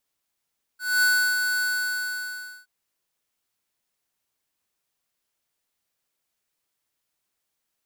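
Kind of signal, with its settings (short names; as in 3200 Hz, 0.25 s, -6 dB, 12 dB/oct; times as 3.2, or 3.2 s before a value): ADSR square 1490 Hz, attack 0.232 s, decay 0.339 s, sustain -5.5 dB, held 0.82 s, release 1.05 s -19 dBFS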